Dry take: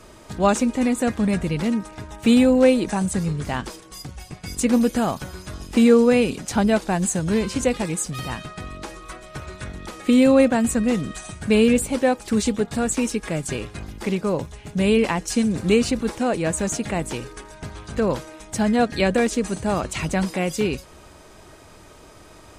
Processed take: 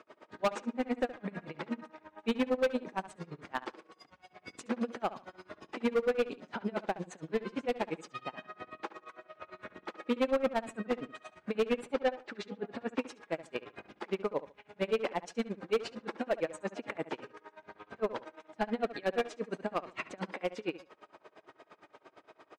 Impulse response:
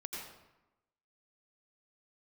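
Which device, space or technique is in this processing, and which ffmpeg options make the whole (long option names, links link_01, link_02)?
helicopter radio: -filter_complex "[0:a]highpass=370,lowpass=2500,aeval=exprs='val(0)*pow(10,-37*(0.5-0.5*cos(2*PI*8.7*n/s))/20)':channel_layout=same,asoftclip=type=hard:threshold=-22dB,asettb=1/sr,asplit=3[link_01][link_02][link_03];[link_01]atrim=end=11.884[link_04];[link_02]atrim=start=11.88:end=12.99,asetpts=PTS-STARTPTS,afade=type=in:duration=0.004:curve=qsin,afade=type=out:start_time=1.106:duration=0.004:curve=qsin,lowpass=5800[link_05];[link_03]atrim=start=12.986[link_06];[link_04][link_05]acrossfade=duration=0.004:curve1=hsin:curve2=qsin[link_07];[link_07][link_06]acrossfade=duration=0.004:curve1=qsin:curve2=hsin,asplit=2[link_08][link_09];[link_09]adelay=71,lowpass=frequency=3300:poles=1,volume=-15dB,asplit=2[link_10][link_11];[link_11]adelay=71,lowpass=frequency=3300:poles=1,volume=0.24,asplit=2[link_12][link_13];[link_13]adelay=71,lowpass=frequency=3300:poles=1,volume=0.24[link_14];[link_08][link_10][link_12][link_14]amix=inputs=4:normalize=0,volume=-1dB"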